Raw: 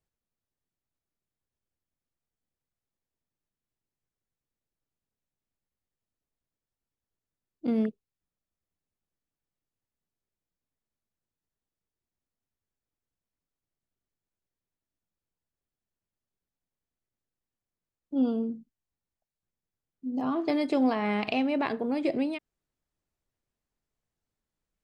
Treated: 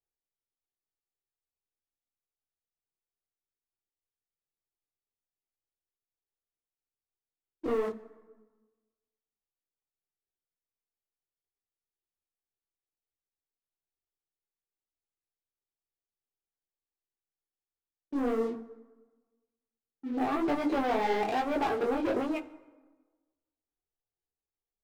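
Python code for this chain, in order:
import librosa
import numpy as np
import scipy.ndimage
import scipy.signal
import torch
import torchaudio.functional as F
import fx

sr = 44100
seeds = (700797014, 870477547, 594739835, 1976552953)

y = fx.lowpass(x, sr, hz=1500.0, slope=6)
y = fx.peak_eq(y, sr, hz=630.0, db=6.5, octaves=2.1)
y = fx.hum_notches(y, sr, base_hz=50, count=6)
y = y + 0.47 * np.pad(y, (int(2.5 * sr / 1000.0), 0))[:len(y)]
y = fx.leveller(y, sr, passes=3)
y = 10.0 ** (-15.0 / 20.0) * np.tanh(y / 10.0 ** (-15.0 / 20.0))
y = fx.rev_plate(y, sr, seeds[0], rt60_s=1.3, hf_ratio=0.6, predelay_ms=0, drr_db=14.0)
y = fx.detune_double(y, sr, cents=37)
y = y * librosa.db_to_amplitude(-5.5)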